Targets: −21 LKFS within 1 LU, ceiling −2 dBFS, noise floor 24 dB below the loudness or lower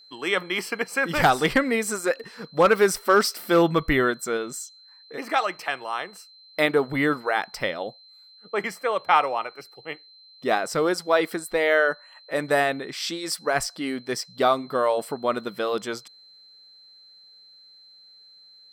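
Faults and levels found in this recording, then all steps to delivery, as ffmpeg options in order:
interfering tone 4,100 Hz; level of the tone −49 dBFS; integrated loudness −24.0 LKFS; sample peak −6.0 dBFS; target loudness −21.0 LKFS
→ -af "bandreject=frequency=4100:width=30"
-af "volume=3dB"

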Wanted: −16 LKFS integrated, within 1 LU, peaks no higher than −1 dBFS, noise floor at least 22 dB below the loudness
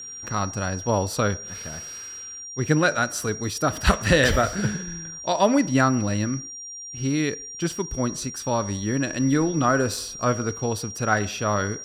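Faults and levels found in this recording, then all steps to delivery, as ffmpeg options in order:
interfering tone 5,700 Hz; level of the tone −35 dBFS; integrated loudness −24.0 LKFS; sample peak −4.5 dBFS; target loudness −16.0 LKFS
→ -af "bandreject=frequency=5700:width=30"
-af "volume=8dB,alimiter=limit=-1dB:level=0:latency=1"

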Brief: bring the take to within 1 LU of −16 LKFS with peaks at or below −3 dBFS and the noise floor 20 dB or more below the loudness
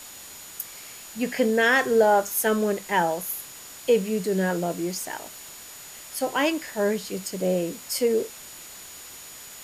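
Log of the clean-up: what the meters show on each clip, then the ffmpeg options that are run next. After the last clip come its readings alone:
interfering tone 6,900 Hz; level of the tone −46 dBFS; background noise floor −43 dBFS; target noise floor −45 dBFS; integrated loudness −24.5 LKFS; sample peak −9.0 dBFS; target loudness −16.0 LKFS
→ -af "bandreject=frequency=6900:width=30"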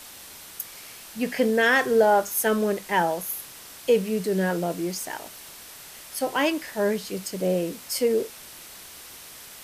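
interfering tone none found; background noise floor −44 dBFS; target noise floor −45 dBFS
→ -af "afftdn=noise_reduction=6:noise_floor=-44"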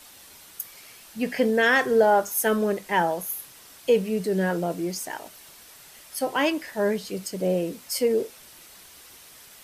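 background noise floor −49 dBFS; integrated loudness −24.5 LKFS; sample peak −9.5 dBFS; target loudness −16.0 LKFS
→ -af "volume=8.5dB,alimiter=limit=-3dB:level=0:latency=1"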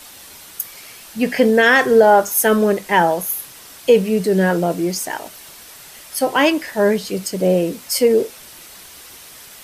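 integrated loudness −16.5 LKFS; sample peak −3.0 dBFS; background noise floor −40 dBFS

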